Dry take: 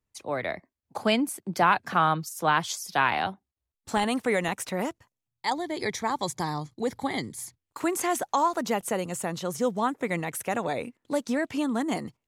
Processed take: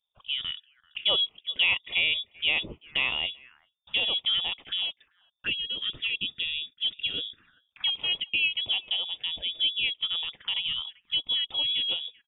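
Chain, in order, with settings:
far-end echo of a speakerphone 390 ms, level −25 dB
voice inversion scrambler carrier 3,600 Hz
phaser swept by the level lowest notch 300 Hz, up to 1,600 Hz, full sweep at −28.5 dBFS

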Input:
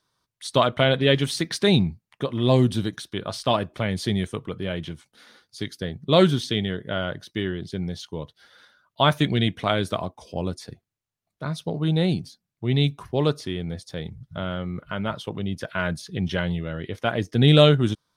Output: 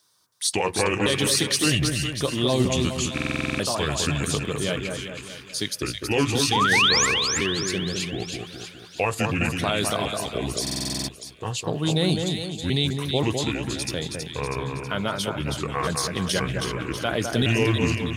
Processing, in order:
pitch shifter gated in a rhythm −5 semitones, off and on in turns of 529 ms
high-pass filter 60 Hz
bass and treble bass −5 dB, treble +13 dB
in parallel at 0 dB: output level in coarse steps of 19 dB
on the sum: sound drawn into the spectrogram rise, 0:06.52–0:07.06, 760–7,600 Hz −19 dBFS
brickwall limiter −11 dBFS, peak gain reduction 12 dB
on a send: echo with a time of its own for lows and highs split 1,900 Hz, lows 206 ms, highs 322 ms, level −4.5 dB
on the sum: buffer that repeats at 0:03.13/0:10.62, samples 2,048, times 9

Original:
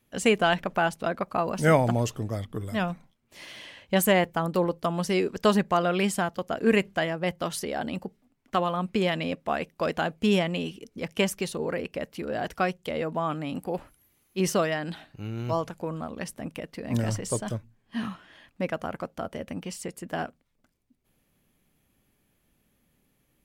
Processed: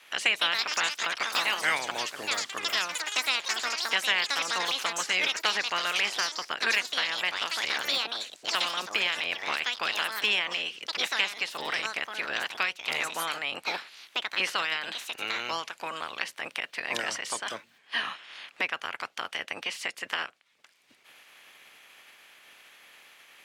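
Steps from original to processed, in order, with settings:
ceiling on every frequency bin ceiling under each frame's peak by 18 dB
resonant band-pass 2,300 Hz, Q 0.89
delay with pitch and tempo change per echo 220 ms, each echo +5 semitones, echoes 3
multiband upward and downward compressor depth 70%

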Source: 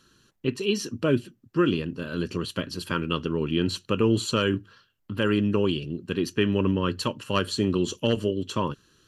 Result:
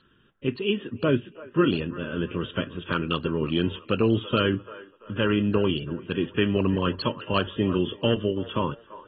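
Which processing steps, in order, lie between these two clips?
delay with a band-pass on its return 339 ms, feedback 38%, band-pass 960 Hz, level −15 dB
AAC 16 kbit/s 32,000 Hz

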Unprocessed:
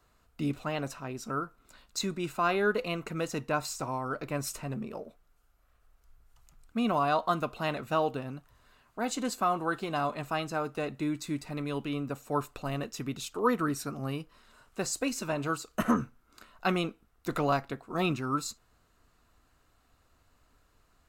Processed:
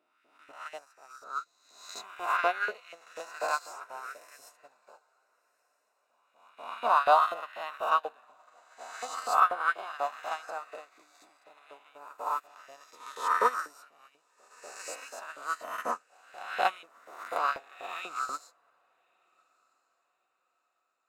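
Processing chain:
peak hold with a rise ahead of every peak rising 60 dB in 1.83 s
auto-filter high-pass saw up 4.1 Hz 540–1,900 Hz
feedback delay with all-pass diffusion 1,256 ms, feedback 42%, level −14 dB
expander for the loud parts 2.5 to 1, over −38 dBFS

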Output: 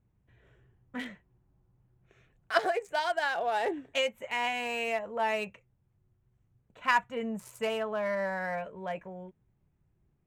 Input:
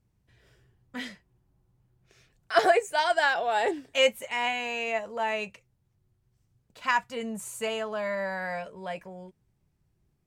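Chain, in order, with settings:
adaptive Wiener filter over 9 samples
0:02.57–0:05.13: downward compressor 6 to 1, threshold −26 dBFS, peak gain reduction 10.5 dB

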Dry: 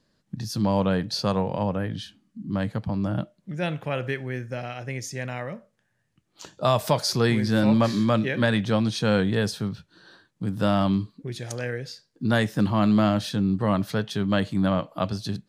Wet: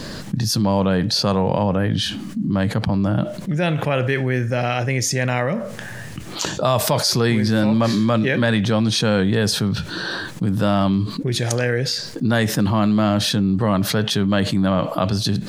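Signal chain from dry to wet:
envelope flattener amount 70%
level +1 dB

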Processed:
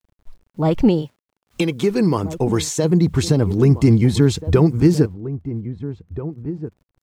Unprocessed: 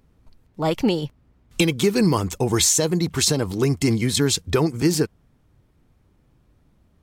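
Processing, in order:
spectral tilt −3 dB per octave
noise reduction from a noise print of the clip's start 19 dB
bit reduction 10 bits
0:01.01–0:02.83: high-pass filter 660 Hz → 200 Hz 6 dB per octave
slap from a distant wall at 280 metres, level −13 dB

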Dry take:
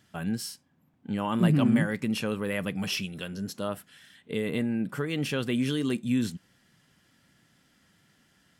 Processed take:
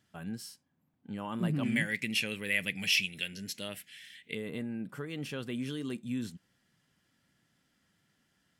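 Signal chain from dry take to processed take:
0:01.63–0:04.35: high shelf with overshoot 1,600 Hz +10 dB, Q 3
level −9 dB

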